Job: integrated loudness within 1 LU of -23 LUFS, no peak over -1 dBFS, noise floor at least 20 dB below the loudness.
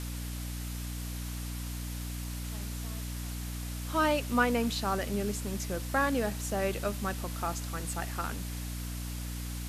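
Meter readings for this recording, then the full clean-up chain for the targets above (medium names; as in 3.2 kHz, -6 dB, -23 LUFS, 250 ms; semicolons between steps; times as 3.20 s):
hum 60 Hz; highest harmonic 300 Hz; hum level -35 dBFS; noise floor -38 dBFS; noise floor target -54 dBFS; loudness -33.5 LUFS; peak level -13.0 dBFS; loudness target -23.0 LUFS
-> de-hum 60 Hz, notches 5; noise reduction 16 dB, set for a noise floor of -38 dBFS; trim +10.5 dB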